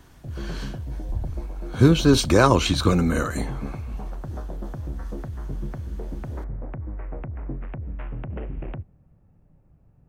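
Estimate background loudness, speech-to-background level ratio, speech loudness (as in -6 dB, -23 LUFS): -35.0 LUFS, 15.0 dB, -20.0 LUFS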